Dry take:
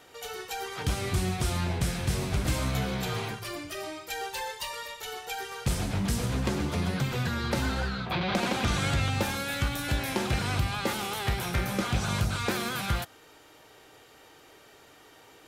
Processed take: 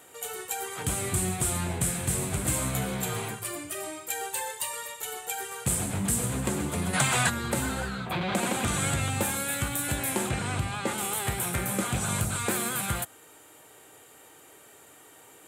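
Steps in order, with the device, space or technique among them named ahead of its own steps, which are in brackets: budget condenser microphone (HPF 87 Hz; resonant high shelf 6600 Hz +7.5 dB, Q 3); 6.94–7.3 spectral gain 560–11000 Hz +11 dB; 10.29–10.98 air absorption 59 m

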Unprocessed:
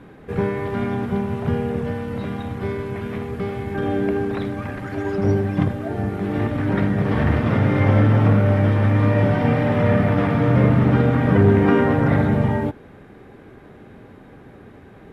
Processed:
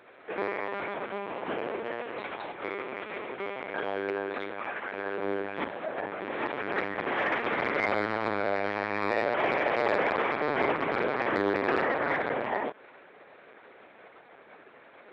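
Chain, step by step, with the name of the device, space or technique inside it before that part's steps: talking toy (LPC vocoder at 8 kHz pitch kept; HPF 610 Hz 12 dB/oct; bell 2300 Hz +4 dB 0.28 oct; soft clip -15 dBFS, distortion -18 dB)

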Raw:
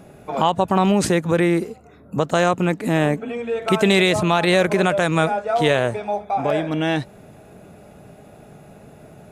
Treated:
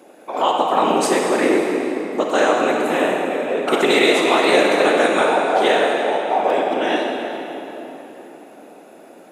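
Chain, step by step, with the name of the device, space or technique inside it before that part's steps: whispering ghost (whisperiser; HPF 280 Hz 24 dB/oct; reverb RT60 3.7 s, pre-delay 28 ms, DRR -0.5 dB)

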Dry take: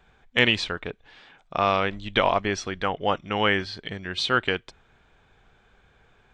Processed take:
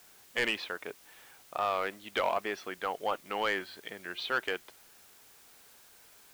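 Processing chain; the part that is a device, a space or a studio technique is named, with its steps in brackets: tape answering machine (BPF 350–3000 Hz; soft clip -14.5 dBFS, distortion -13 dB; wow and flutter; white noise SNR 22 dB); gain -5.5 dB

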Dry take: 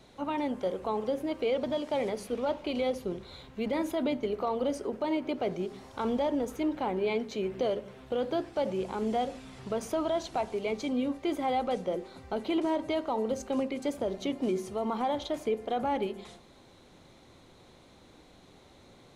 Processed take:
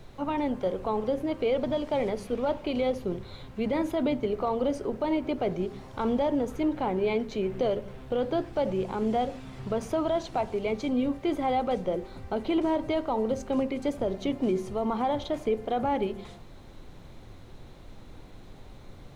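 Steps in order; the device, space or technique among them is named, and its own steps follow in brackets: car interior (bell 110 Hz +8 dB 0.92 oct; high shelf 4500 Hz -7.5 dB; brown noise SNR 17 dB); gain +2.5 dB

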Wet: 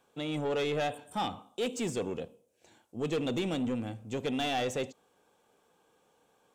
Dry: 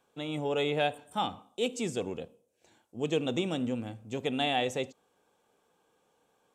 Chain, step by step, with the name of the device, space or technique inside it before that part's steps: saturation between pre-emphasis and de-emphasis (high shelf 4000 Hz +9.5 dB; soft clip -28 dBFS, distortion -10 dB; high shelf 4000 Hz -9.5 dB); gain +2.5 dB

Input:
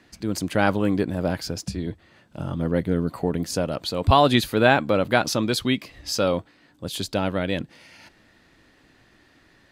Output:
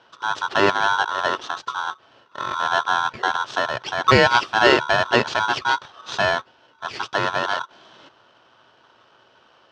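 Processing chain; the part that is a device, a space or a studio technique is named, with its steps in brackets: ring modulator pedal into a guitar cabinet (polarity switched at an audio rate 1200 Hz; speaker cabinet 93–4400 Hz, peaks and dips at 120 Hz +5 dB, 180 Hz -4 dB, 380 Hz +6 dB, 2100 Hz -7 dB, 3800 Hz -5 dB); gain +3 dB

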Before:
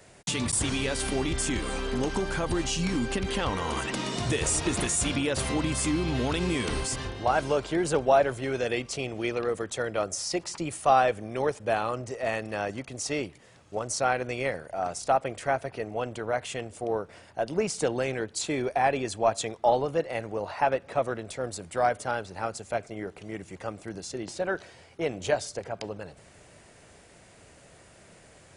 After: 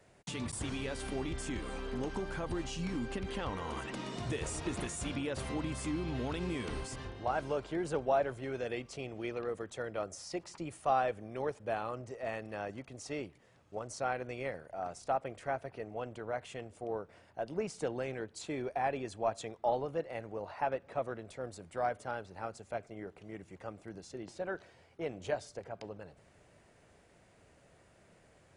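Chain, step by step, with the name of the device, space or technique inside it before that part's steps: behind a face mask (high shelf 3300 Hz -8 dB); gain -8.5 dB

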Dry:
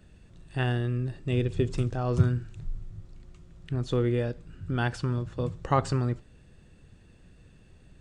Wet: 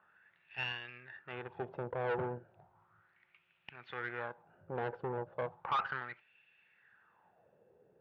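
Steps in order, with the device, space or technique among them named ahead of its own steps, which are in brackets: wah-wah guitar rig (wah 0.35 Hz 460–2600 Hz, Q 5.2; tube stage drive 43 dB, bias 0.75; speaker cabinet 100–3400 Hz, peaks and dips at 280 Hz -9 dB, 850 Hz +8 dB, 1500 Hz +6 dB); gain +11 dB

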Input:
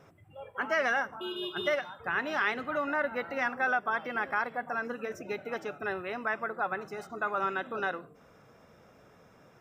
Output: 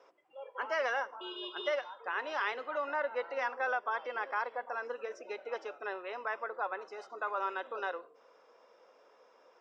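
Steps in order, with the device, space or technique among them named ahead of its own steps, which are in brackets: phone speaker on a table (speaker cabinet 350–6900 Hz, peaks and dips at 510 Hz +8 dB, 990 Hz +9 dB, 3000 Hz +4 dB, 4900 Hz +7 dB); gain -7 dB

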